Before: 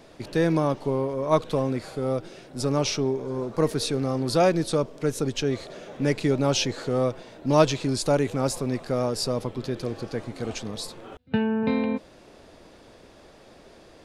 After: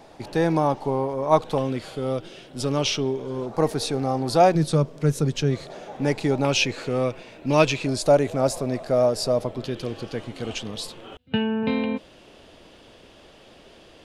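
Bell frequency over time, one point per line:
bell +11 dB 0.42 oct
820 Hz
from 1.58 s 3100 Hz
from 3.46 s 780 Hz
from 4.55 s 150 Hz
from 5.7 s 810 Hz
from 6.45 s 2500 Hz
from 7.86 s 640 Hz
from 9.64 s 3000 Hz

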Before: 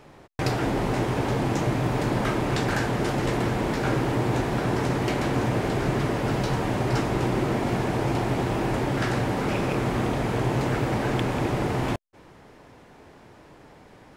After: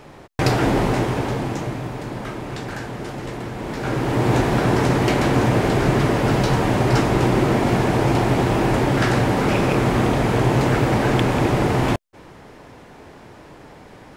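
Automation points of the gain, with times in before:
0.77 s +7 dB
1.98 s -5 dB
3.52 s -5 dB
4.31 s +7 dB

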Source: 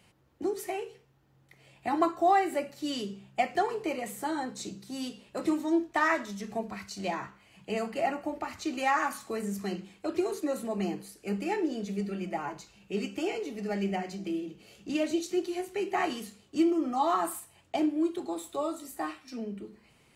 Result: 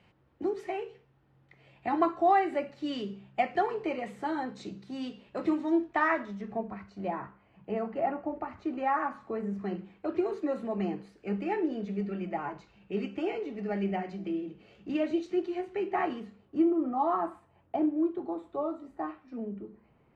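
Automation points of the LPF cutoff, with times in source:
5.82 s 2900 Hz
6.78 s 1300 Hz
9.25 s 1300 Hz
10.36 s 2300 Hz
15.66 s 2300 Hz
16.72 s 1200 Hz

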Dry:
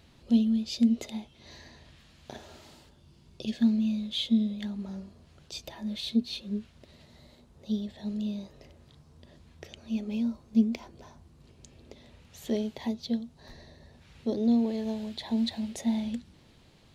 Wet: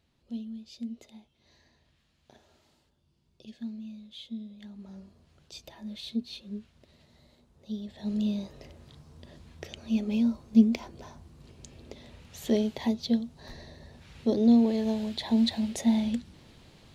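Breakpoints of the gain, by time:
4.46 s -14 dB
5.05 s -5.5 dB
7.76 s -5.5 dB
8.17 s +4 dB

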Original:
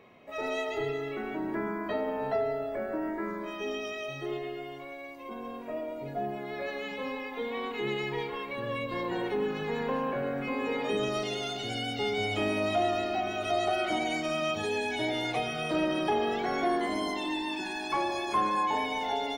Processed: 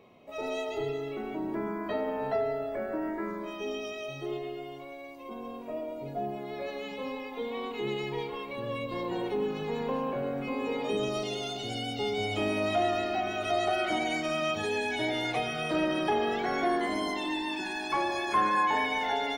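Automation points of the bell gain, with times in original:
bell 1700 Hz 0.7 oct
1.47 s -10.5 dB
2 s -0.5 dB
3.15 s -0.5 dB
3.68 s -8.5 dB
12.14 s -8.5 dB
12.79 s +2.5 dB
17.95 s +2.5 dB
18.56 s +10 dB

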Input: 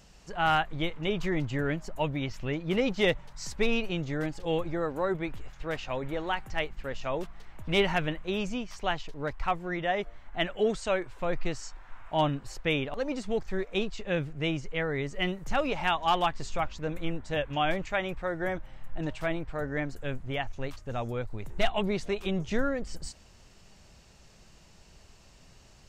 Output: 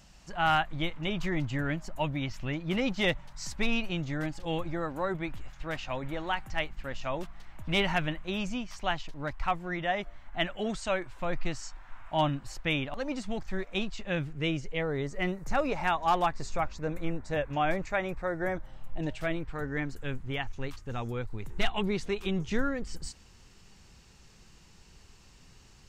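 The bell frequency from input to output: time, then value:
bell -10.5 dB 0.38 oct
14.19 s 440 Hz
15.15 s 3100 Hz
18.53 s 3100 Hz
19.49 s 620 Hz

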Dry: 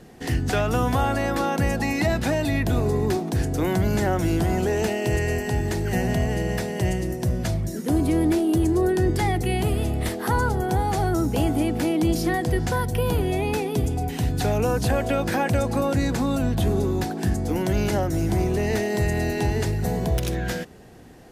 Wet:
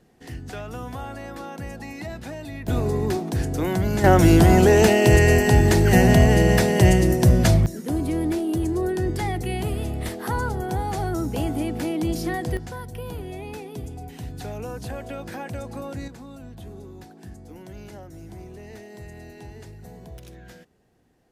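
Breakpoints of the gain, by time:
-12 dB
from 2.68 s -1 dB
from 4.04 s +8.5 dB
from 7.66 s -3.5 dB
from 12.57 s -11 dB
from 16.08 s -18 dB

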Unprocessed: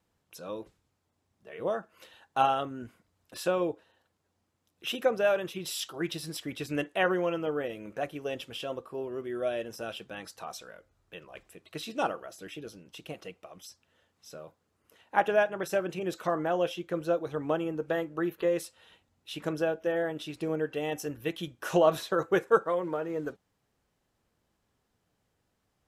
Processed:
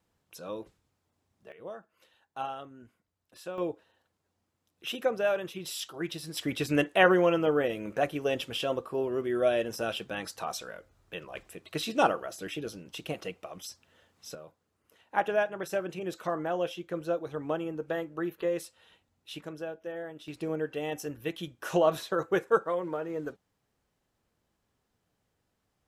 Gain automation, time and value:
0 dB
from 1.52 s -11 dB
from 3.58 s -2 dB
from 6.37 s +5.5 dB
from 14.35 s -2.5 dB
from 19.41 s -9 dB
from 20.28 s -1.5 dB

